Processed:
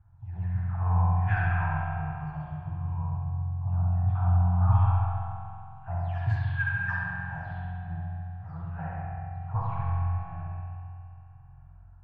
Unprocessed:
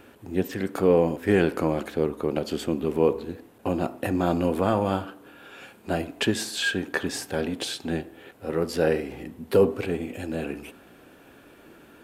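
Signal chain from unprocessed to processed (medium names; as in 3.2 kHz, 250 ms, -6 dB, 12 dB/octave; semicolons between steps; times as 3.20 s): delay that grows with frequency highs early, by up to 343 ms; inverse Chebyshev band-stop 200–550 Hz, stop band 40 dB; time-frequency box 2.95–5.70 s, 220–10000 Hz -6 dB; tilt shelf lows +7 dB, about 1.4 kHz; level-controlled noise filter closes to 340 Hz, open at -16 dBFS; bucket-brigade echo 67 ms, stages 2048, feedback 71%, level -3 dB; spring tank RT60 2.7 s, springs 45 ms, chirp 70 ms, DRR -0.5 dB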